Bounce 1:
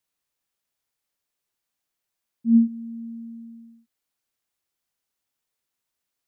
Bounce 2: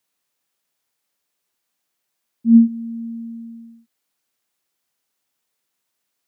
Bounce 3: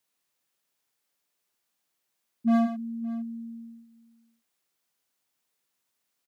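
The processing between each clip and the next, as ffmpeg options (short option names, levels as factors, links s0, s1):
-af "highpass=130,volume=2.11"
-af "asoftclip=type=hard:threshold=0.168,aecho=1:1:107|565:0.355|0.106,volume=0.668"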